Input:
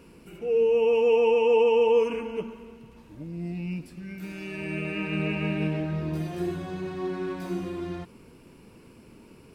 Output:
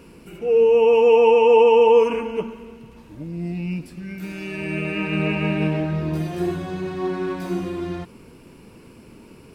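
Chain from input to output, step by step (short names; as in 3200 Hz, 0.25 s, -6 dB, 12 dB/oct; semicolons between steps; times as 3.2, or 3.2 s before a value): dynamic EQ 910 Hz, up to +5 dB, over -38 dBFS, Q 1.2; gain +5.5 dB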